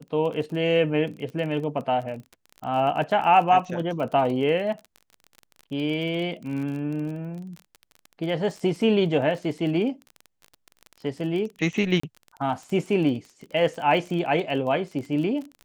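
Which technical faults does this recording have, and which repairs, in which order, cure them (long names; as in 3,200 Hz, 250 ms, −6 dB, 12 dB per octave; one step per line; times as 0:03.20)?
surface crackle 27 per second −32 dBFS
0:12.00–0:12.03: drop-out 34 ms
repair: click removal
repair the gap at 0:12.00, 34 ms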